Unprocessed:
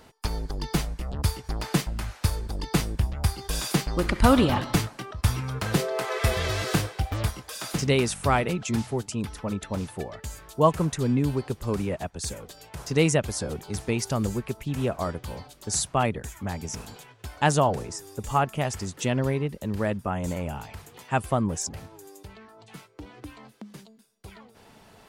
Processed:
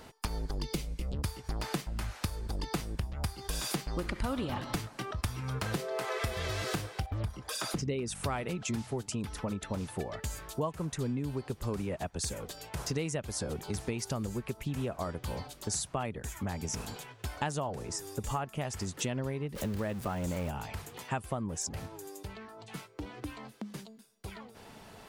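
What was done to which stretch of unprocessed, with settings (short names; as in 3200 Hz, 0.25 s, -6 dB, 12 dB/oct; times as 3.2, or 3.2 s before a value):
0.62–1.22 spectral gain 590–2000 Hz -9 dB
7.06–8.15 formant sharpening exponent 1.5
19.55–20.51 zero-crossing step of -34 dBFS
whole clip: compressor 6:1, threshold -33 dBFS; gain +1.5 dB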